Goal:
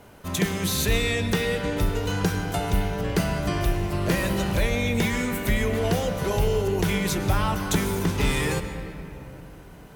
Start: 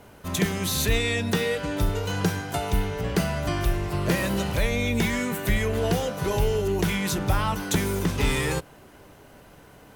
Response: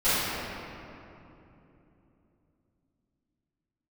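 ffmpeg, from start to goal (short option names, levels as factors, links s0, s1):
-filter_complex "[0:a]asplit=2[s0][s1];[1:a]atrim=start_sample=2205,adelay=98[s2];[s1][s2]afir=irnorm=-1:irlink=0,volume=0.0531[s3];[s0][s3]amix=inputs=2:normalize=0"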